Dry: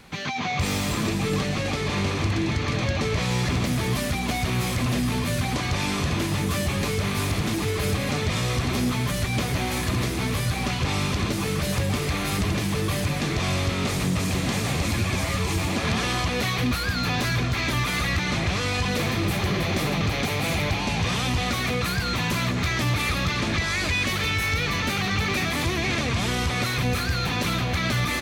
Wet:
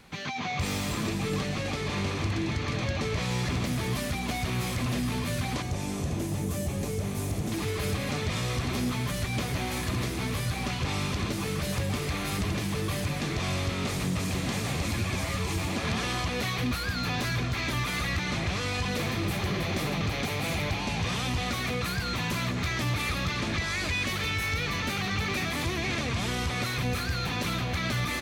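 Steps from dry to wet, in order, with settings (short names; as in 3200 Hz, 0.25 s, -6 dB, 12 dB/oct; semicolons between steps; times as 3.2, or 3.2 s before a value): 5.62–7.52 band shelf 2200 Hz -9 dB 2.6 oct; gain -5 dB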